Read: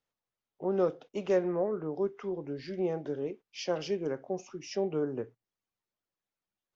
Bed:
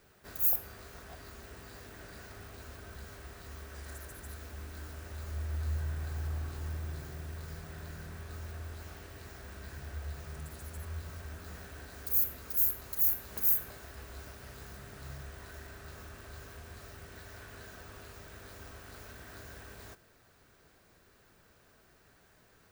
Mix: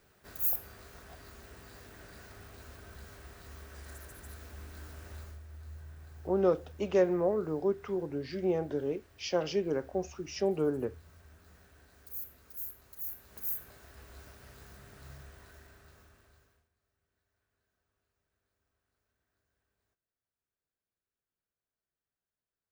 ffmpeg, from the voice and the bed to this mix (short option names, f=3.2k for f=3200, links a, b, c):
-filter_complex "[0:a]adelay=5650,volume=1.5dB[a];[1:a]volume=5.5dB,afade=t=out:st=5.16:d=0.24:silence=0.298538,afade=t=in:st=12.98:d=1.15:silence=0.398107,afade=t=out:st=15.15:d=1.54:silence=0.0334965[b];[a][b]amix=inputs=2:normalize=0"